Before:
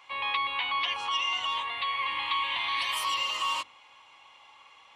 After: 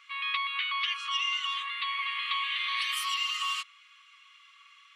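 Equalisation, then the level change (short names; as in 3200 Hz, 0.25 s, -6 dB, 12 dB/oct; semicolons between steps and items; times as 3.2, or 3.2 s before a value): brick-wall FIR high-pass 1100 Hz; 0.0 dB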